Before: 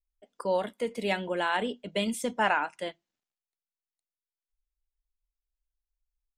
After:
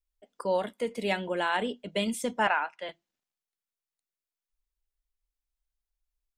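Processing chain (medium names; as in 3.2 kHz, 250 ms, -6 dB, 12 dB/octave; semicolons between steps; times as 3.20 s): 2.47–2.89 s: three-band isolator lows -13 dB, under 490 Hz, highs -23 dB, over 4.6 kHz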